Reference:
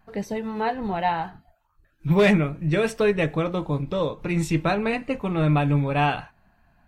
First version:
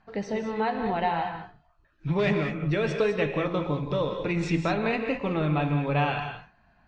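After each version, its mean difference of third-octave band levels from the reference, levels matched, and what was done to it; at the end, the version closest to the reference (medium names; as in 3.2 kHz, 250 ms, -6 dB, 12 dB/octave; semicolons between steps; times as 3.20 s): 5.0 dB: low-pass 5.7 kHz 24 dB/octave; bass shelf 150 Hz -6 dB; compression 4:1, threshold -23 dBFS, peak gain reduction 8 dB; gated-style reverb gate 230 ms rising, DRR 5 dB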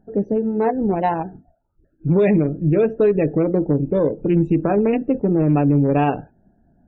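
8.0 dB: local Wiener filter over 41 samples; peaking EQ 350 Hz +14 dB 2.1 oct; peak limiter -9 dBFS, peak gain reduction 11 dB; loudest bins only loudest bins 64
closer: first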